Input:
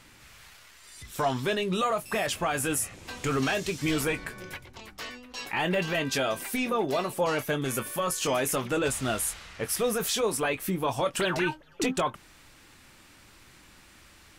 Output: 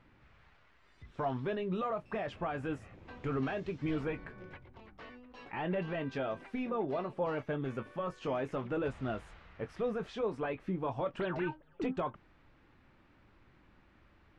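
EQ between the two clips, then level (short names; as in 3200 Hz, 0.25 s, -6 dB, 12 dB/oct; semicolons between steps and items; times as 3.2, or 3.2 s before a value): tape spacing loss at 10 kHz 33 dB; high shelf 4400 Hz -8.5 dB; -5.0 dB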